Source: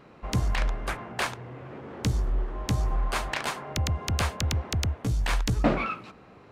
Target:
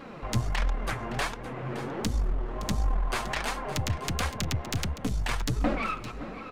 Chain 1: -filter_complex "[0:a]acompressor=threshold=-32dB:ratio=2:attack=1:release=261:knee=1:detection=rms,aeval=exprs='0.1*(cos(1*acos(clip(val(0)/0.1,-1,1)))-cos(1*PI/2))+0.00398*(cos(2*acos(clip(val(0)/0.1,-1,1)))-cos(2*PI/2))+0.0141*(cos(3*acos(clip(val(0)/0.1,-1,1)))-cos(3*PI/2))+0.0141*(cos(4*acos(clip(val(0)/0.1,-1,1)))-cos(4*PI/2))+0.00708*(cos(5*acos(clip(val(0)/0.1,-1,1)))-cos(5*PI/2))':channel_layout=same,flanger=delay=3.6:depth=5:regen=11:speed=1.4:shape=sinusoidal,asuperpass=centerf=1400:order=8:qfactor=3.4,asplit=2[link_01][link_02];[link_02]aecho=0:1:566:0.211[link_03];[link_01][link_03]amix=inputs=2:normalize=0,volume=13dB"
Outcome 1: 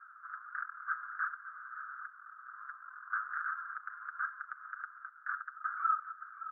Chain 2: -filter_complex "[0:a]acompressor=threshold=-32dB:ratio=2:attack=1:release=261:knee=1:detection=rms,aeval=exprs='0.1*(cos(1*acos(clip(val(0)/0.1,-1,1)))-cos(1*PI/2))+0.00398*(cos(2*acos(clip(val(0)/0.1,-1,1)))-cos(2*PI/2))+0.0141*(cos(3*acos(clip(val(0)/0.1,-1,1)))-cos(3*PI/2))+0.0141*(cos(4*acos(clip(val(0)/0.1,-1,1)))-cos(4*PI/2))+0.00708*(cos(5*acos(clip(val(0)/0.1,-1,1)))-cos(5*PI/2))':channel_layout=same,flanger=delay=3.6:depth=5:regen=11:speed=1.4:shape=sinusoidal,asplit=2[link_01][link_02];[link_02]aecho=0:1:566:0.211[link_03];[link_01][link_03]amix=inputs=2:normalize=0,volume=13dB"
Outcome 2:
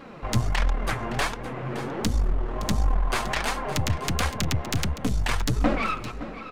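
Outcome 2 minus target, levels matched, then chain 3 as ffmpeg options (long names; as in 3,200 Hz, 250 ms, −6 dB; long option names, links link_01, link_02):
downward compressor: peak gain reduction −4 dB
-filter_complex "[0:a]acompressor=threshold=-40.5dB:ratio=2:attack=1:release=261:knee=1:detection=rms,aeval=exprs='0.1*(cos(1*acos(clip(val(0)/0.1,-1,1)))-cos(1*PI/2))+0.00398*(cos(2*acos(clip(val(0)/0.1,-1,1)))-cos(2*PI/2))+0.0141*(cos(3*acos(clip(val(0)/0.1,-1,1)))-cos(3*PI/2))+0.0141*(cos(4*acos(clip(val(0)/0.1,-1,1)))-cos(4*PI/2))+0.00708*(cos(5*acos(clip(val(0)/0.1,-1,1)))-cos(5*PI/2))':channel_layout=same,flanger=delay=3.6:depth=5:regen=11:speed=1.4:shape=sinusoidal,asplit=2[link_01][link_02];[link_02]aecho=0:1:566:0.211[link_03];[link_01][link_03]amix=inputs=2:normalize=0,volume=13dB"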